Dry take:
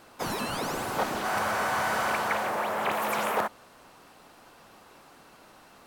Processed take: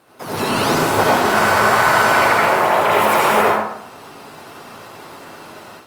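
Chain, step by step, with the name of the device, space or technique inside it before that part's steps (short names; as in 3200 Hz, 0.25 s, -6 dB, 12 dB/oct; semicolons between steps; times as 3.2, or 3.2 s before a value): far-field microphone of a smart speaker (reverb RT60 0.75 s, pre-delay 68 ms, DRR -4.5 dB; HPF 88 Hz 24 dB/oct; AGC gain up to 11 dB; Opus 32 kbps 48000 Hz)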